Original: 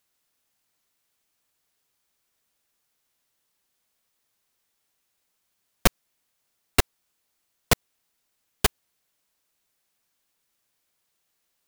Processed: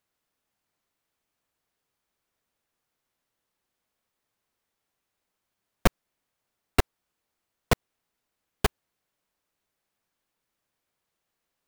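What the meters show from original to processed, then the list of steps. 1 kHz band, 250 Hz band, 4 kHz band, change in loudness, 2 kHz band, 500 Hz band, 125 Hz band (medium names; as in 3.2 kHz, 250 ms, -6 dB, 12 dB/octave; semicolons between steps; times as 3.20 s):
-1.5 dB, 0.0 dB, -6.5 dB, -3.5 dB, -3.5 dB, -0.5 dB, 0.0 dB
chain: treble shelf 2.6 kHz -10 dB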